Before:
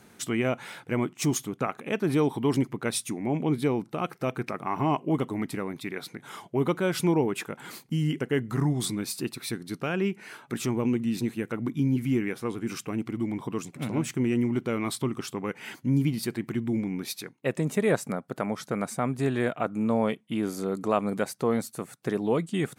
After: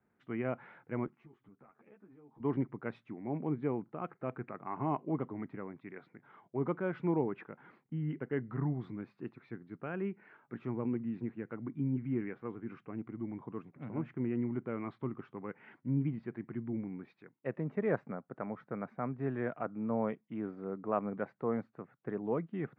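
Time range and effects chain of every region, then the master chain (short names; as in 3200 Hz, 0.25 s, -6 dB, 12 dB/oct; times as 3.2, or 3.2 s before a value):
1.06–2.4 compressor 10:1, threshold -36 dBFS + ensemble effect
whole clip: LPF 1900 Hz 24 dB/oct; three-band expander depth 40%; gain -9 dB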